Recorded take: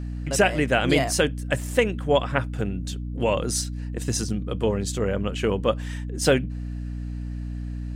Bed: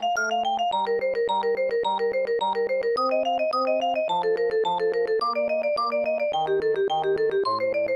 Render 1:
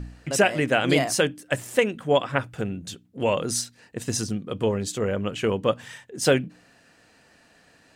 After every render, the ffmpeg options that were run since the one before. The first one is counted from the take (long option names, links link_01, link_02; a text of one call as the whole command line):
ffmpeg -i in.wav -af "bandreject=frequency=60:width_type=h:width=4,bandreject=frequency=120:width_type=h:width=4,bandreject=frequency=180:width_type=h:width=4,bandreject=frequency=240:width_type=h:width=4,bandreject=frequency=300:width_type=h:width=4" out.wav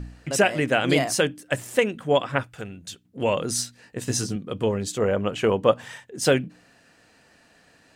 ffmpeg -i in.wav -filter_complex "[0:a]asettb=1/sr,asplit=3[link_01][link_02][link_03];[link_01]atrim=end=2.434[link_04];[link_02]atrim=start=2.43:end=3.05,asetpts=PTS-STARTPTS,afade=type=in:duration=0.004:curve=qsin,afade=type=out:start_time=0.616:duration=0.004:curve=qsin,equalizer=frequency=210:width=0.36:gain=-9[link_05];[link_03]atrim=start=3.046[link_06];[link_04][link_05]acrossfade=duration=0.004:curve1=hsin:curve2=qsin[link_07];[link_07][link_06]acrossfade=duration=0.004:curve1=qsin:curve2=hsin,asettb=1/sr,asplit=3[link_08][link_09][link_10];[link_08]atrim=end=3.574[link_11];[link_09]atrim=start=3.57:end=4.36,asetpts=PTS-STARTPTS,afade=type=in:duration=0.004:curve=qsin,afade=type=out:start_time=0.786:duration=0.004:curve=qsin,asplit=2[link_12][link_13];[link_13]adelay=16,volume=-4.5dB[link_14];[link_12][link_14]amix=inputs=2:normalize=0,atrim=end_sample=34839[link_15];[link_10]atrim=start=4.356[link_16];[link_11][link_15]acrossfade=duration=0.004:curve1=hsin:curve2=qsin[link_17];[link_17][link_16]acrossfade=duration=0.004:curve1=qsin:curve2=hsin,asettb=1/sr,asplit=3[link_18][link_19][link_20];[link_18]atrim=end=4.984[link_21];[link_19]atrim=start=4.98:end=6,asetpts=PTS-STARTPTS,afade=type=in:duration=0.004:curve=qsin,afade=type=out:start_time=1.016:duration=0.004:curve=qsin,equalizer=frequency=760:width=0.79:gain=6[link_22];[link_20]atrim=start=5.996[link_23];[link_21][link_22]acrossfade=duration=0.004:curve1=hsin:curve2=qsin[link_24];[link_24][link_23]acrossfade=duration=0.004:curve1=qsin:curve2=hsin" out.wav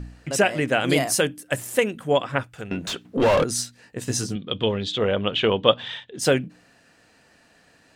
ffmpeg -i in.wav -filter_complex "[0:a]asettb=1/sr,asplit=3[link_01][link_02][link_03];[link_01]atrim=end=0.804[link_04];[link_02]atrim=start=0.8:end=2.14,asetpts=PTS-STARTPTS,afade=type=in:duration=0.004:curve=qsin,afade=type=out:start_time=1.336:duration=0.004:curve=qsin,equalizer=frequency=12000:width_type=o:width=0.83:gain=8.5[link_05];[link_03]atrim=start=2.136[link_06];[link_04][link_05]acrossfade=duration=0.004:curve1=hsin:curve2=qsin[link_07];[link_07][link_06]acrossfade=duration=0.004:curve1=qsin:curve2=hsin,asettb=1/sr,asplit=3[link_08][link_09][link_10];[link_08]atrim=end=2.714[link_11];[link_09]atrim=start=2.71:end=3.44,asetpts=PTS-STARTPTS,afade=type=in:duration=0.004:curve=qsin,afade=type=out:start_time=0.726:duration=0.004:curve=qsin,asplit=2[link_12][link_13];[link_13]highpass=frequency=720:poles=1,volume=32dB,asoftclip=type=tanh:threshold=-10dB[link_14];[link_12][link_14]amix=inputs=2:normalize=0,lowpass=frequency=1300:poles=1,volume=-6dB[link_15];[link_10]atrim=start=3.436[link_16];[link_11][link_15]acrossfade=duration=0.004:curve1=hsin:curve2=qsin[link_17];[link_17][link_16]acrossfade=duration=0.004:curve1=qsin:curve2=hsin,asettb=1/sr,asplit=3[link_18][link_19][link_20];[link_18]atrim=end=4.354[link_21];[link_19]atrim=start=4.35:end=6.19,asetpts=PTS-STARTPTS,afade=type=in:duration=0.004:curve=qsin,afade=type=out:start_time=1.836:duration=0.004:curve=qsin,lowpass=frequency=3500:width_type=q:width=8.1[link_22];[link_20]atrim=start=6.186[link_23];[link_21][link_22]acrossfade=duration=0.004:curve1=hsin:curve2=qsin[link_24];[link_24][link_23]acrossfade=duration=0.004:curve1=qsin:curve2=hsin" out.wav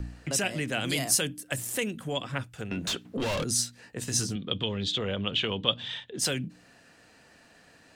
ffmpeg -i in.wav -filter_complex "[0:a]acrossover=split=300|3000[link_01][link_02][link_03];[link_02]acompressor=threshold=-38dB:ratio=2[link_04];[link_01][link_04][link_03]amix=inputs=3:normalize=0,acrossover=split=750|2600[link_05][link_06][link_07];[link_05]alimiter=level_in=1.5dB:limit=-24dB:level=0:latency=1,volume=-1.5dB[link_08];[link_08][link_06][link_07]amix=inputs=3:normalize=0" out.wav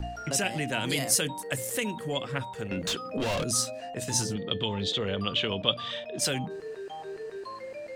ffmpeg -i in.wav -i bed.wav -filter_complex "[1:a]volume=-15.5dB[link_01];[0:a][link_01]amix=inputs=2:normalize=0" out.wav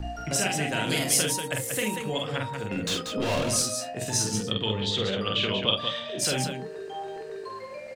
ffmpeg -i in.wav -filter_complex "[0:a]asplit=2[link_01][link_02];[link_02]adelay=29,volume=-14dB[link_03];[link_01][link_03]amix=inputs=2:normalize=0,asplit=2[link_04][link_05];[link_05]aecho=0:1:46.65|186.6:0.708|0.501[link_06];[link_04][link_06]amix=inputs=2:normalize=0" out.wav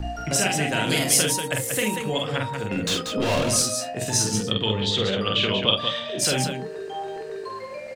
ffmpeg -i in.wav -af "volume=4dB" out.wav